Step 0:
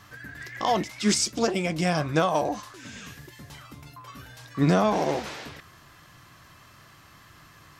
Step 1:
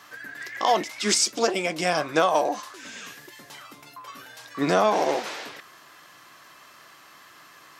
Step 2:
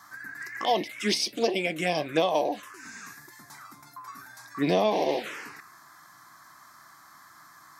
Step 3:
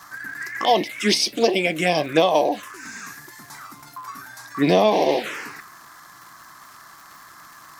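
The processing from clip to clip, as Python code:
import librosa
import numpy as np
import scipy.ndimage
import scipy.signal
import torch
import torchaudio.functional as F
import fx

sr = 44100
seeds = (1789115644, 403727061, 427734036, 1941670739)

y1 = scipy.signal.sosfilt(scipy.signal.butter(2, 360.0, 'highpass', fs=sr, output='sos'), x)
y1 = y1 * librosa.db_to_amplitude(3.5)
y2 = fx.env_phaser(y1, sr, low_hz=460.0, high_hz=1400.0, full_db=-19.5)
y3 = fx.dmg_crackle(y2, sr, seeds[0], per_s=250.0, level_db=-44.0)
y3 = y3 * librosa.db_to_amplitude(7.0)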